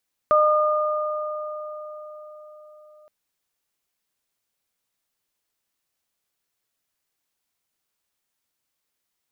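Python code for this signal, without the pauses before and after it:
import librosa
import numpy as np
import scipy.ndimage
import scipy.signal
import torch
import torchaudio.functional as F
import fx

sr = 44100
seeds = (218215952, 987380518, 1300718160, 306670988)

y = fx.additive(sr, length_s=2.77, hz=608.0, level_db=-16, upper_db=(0.5,), decay_s=4.99, upper_decays_s=(3.75,))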